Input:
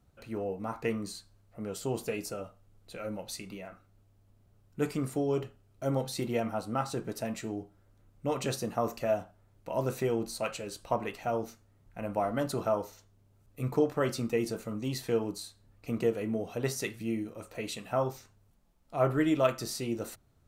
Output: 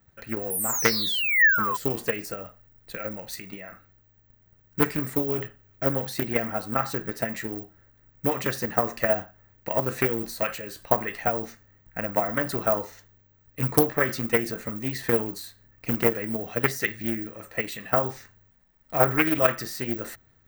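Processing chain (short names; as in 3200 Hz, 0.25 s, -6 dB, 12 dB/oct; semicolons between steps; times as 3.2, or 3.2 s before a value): transient shaper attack +9 dB, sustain +5 dB; painted sound fall, 0.5–1.77, 970–11000 Hz -28 dBFS; careless resampling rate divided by 2×, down filtered, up zero stuff; bell 1800 Hz +14.5 dB 0.44 oct; Doppler distortion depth 0.41 ms; gain -1 dB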